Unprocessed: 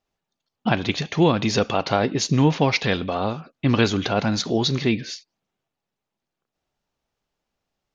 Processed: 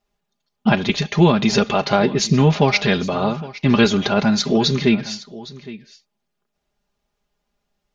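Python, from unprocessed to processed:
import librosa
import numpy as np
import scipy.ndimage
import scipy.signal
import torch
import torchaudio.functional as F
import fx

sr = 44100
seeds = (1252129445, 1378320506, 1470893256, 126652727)

p1 = fx.low_shelf(x, sr, hz=110.0, db=5.5)
p2 = p1 + 0.68 * np.pad(p1, (int(4.9 * sr / 1000.0), 0))[:len(p1)]
p3 = p2 + fx.echo_single(p2, sr, ms=813, db=-18.0, dry=0)
y = p3 * librosa.db_to_amplitude(2.0)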